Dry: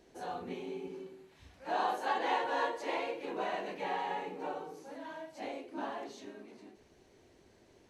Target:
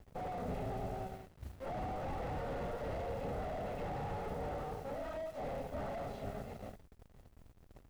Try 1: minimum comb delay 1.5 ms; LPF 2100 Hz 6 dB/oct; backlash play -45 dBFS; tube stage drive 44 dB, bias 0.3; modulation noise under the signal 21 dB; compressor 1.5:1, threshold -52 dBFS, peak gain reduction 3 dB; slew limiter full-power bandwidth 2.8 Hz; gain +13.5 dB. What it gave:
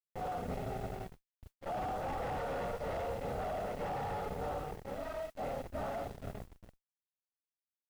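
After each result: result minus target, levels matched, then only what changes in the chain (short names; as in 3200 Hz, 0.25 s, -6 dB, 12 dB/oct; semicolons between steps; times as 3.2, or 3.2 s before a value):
backlash: distortion +9 dB; slew limiter: distortion -6 dB
change: backlash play -55 dBFS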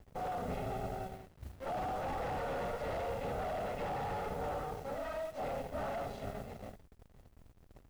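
slew limiter: distortion -6 dB
change: slew limiter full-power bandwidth 1.5 Hz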